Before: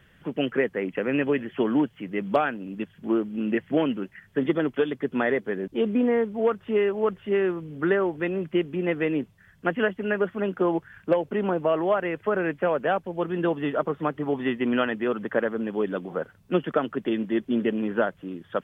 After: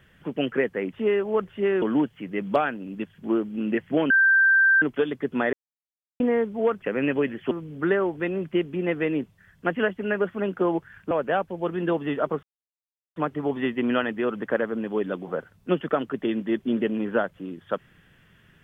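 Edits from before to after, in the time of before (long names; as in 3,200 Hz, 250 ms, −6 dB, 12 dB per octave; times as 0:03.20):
0:00.93–0:01.62: swap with 0:06.62–0:07.51
0:03.90–0:04.62: beep over 1,570 Hz −14.5 dBFS
0:05.33–0:06.00: silence
0:11.11–0:12.67: remove
0:13.99: splice in silence 0.73 s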